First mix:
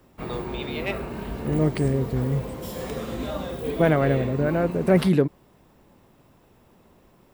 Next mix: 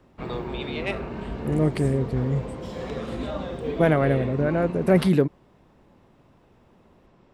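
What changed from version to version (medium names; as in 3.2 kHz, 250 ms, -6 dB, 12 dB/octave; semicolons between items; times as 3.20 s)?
background: add distance through air 120 m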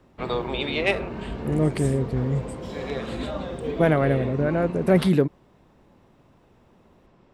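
first voice +7.5 dB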